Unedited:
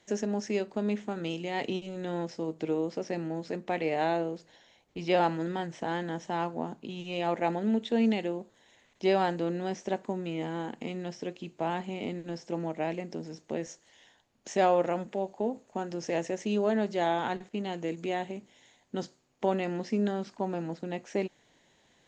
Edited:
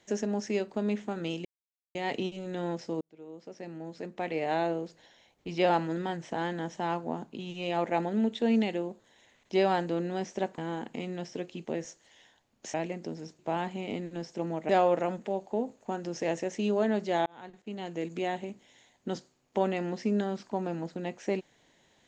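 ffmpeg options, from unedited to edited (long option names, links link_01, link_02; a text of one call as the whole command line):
ffmpeg -i in.wav -filter_complex "[0:a]asplit=9[link_01][link_02][link_03][link_04][link_05][link_06][link_07][link_08][link_09];[link_01]atrim=end=1.45,asetpts=PTS-STARTPTS,afade=type=out:start_time=1.446:duration=0.004:curve=hsin,apad=pad_dur=0.5[link_10];[link_02]atrim=start=1.45:end=2.51,asetpts=PTS-STARTPTS,afade=type=in:duration=0.004:curve=hsin,afade=type=out:start_time=1.056:duration=0.004:curve=hsin[link_11];[link_03]atrim=start=2.51:end=10.082,asetpts=PTS-STARTPTS,afade=type=in:duration=1.72[link_12];[link_04]atrim=start=10.448:end=11.522[link_13];[link_05]atrim=start=13.468:end=14.562[link_14];[link_06]atrim=start=12.818:end=13.472[link_15];[link_07]atrim=start=11.518:end=12.822[link_16];[link_08]atrim=start=14.558:end=17.13,asetpts=PTS-STARTPTS,afade=type=out:start_time=2.568:duration=0.004:curve=hsin[link_17];[link_09]atrim=start=17.13,asetpts=PTS-STARTPTS,afade=type=in:duration=0.83[link_18];[link_10][link_11][link_12]concat=n=3:v=0:a=1[link_19];[link_19][link_13]acrossfade=duration=0.004:curve1=hsin:curve2=hsin[link_20];[link_20][link_14]acrossfade=duration=0.004:curve1=hsin:curve2=hsin[link_21];[link_21][link_15]acrossfade=duration=0.004:curve1=hsin:curve2=hsin[link_22];[link_22][link_16]acrossfade=duration=0.004:curve1=hsin:curve2=hsin[link_23];[link_17][link_18]concat=n=2:v=0:a=1[link_24];[link_23][link_24]acrossfade=duration=0.004:curve1=hsin:curve2=hsin" out.wav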